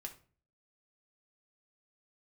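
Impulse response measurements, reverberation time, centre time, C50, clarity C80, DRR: 0.40 s, 10 ms, 13.0 dB, 18.5 dB, 2.0 dB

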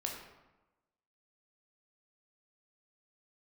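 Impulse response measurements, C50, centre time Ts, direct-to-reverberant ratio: 3.5 dB, 43 ms, 0.0 dB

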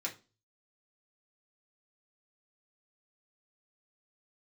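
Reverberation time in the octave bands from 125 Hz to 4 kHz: 0.65, 0.40, 0.30, 0.30, 0.25, 0.30 s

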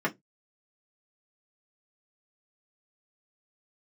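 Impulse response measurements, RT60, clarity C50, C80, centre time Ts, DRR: 0.15 s, 25.5 dB, 34.5 dB, 8 ms, -4.0 dB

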